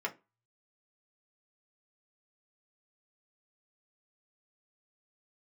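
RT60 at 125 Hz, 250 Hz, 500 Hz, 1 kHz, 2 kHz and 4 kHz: 0.90, 0.30, 0.25, 0.25, 0.20, 0.20 s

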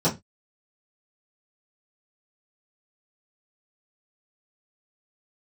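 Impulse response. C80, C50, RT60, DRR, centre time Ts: 23.5 dB, 15.0 dB, 0.20 s, -11.5 dB, 17 ms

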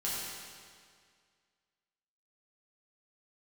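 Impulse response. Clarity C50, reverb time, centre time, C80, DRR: -2.5 dB, 2.0 s, 0.13 s, -0.5 dB, -8.0 dB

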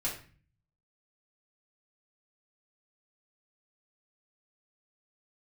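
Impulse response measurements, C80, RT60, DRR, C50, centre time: 11.5 dB, 0.40 s, -6.0 dB, 7.0 dB, 27 ms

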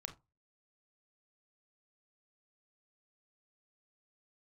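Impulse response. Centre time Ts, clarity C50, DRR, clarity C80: 9 ms, 13.5 dB, 5.5 dB, 21.5 dB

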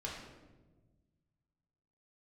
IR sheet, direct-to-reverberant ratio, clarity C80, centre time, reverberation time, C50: -4.5 dB, 4.5 dB, 56 ms, 1.3 s, 2.5 dB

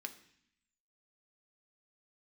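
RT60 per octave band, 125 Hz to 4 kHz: 0.95, 0.95, 0.60, 0.65, 0.90, 0.85 s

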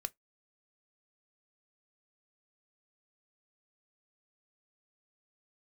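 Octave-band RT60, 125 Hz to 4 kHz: 0.10, 0.15, 0.15, 0.15, 0.15, 0.10 s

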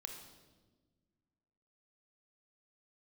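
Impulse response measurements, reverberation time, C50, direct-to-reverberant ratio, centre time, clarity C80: 1.4 s, 5.0 dB, 3.5 dB, 34 ms, 7.0 dB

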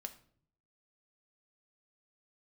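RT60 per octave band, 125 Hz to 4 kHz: 0.80, 0.80, 0.65, 0.50, 0.45, 0.40 s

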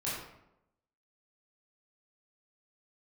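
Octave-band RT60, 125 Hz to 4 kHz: 0.85, 0.90, 0.90, 0.80, 0.65, 0.50 s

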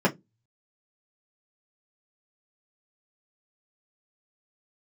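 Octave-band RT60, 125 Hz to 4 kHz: 0.30, 0.30, 0.20, 0.15, 0.10, 0.10 s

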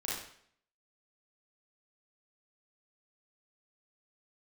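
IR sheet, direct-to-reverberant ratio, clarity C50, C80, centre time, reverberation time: -7.0 dB, -0.5 dB, 5.0 dB, 61 ms, 0.60 s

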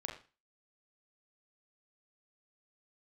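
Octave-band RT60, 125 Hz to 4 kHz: 0.35, 0.35, 0.30, 0.35, 0.35, 0.35 s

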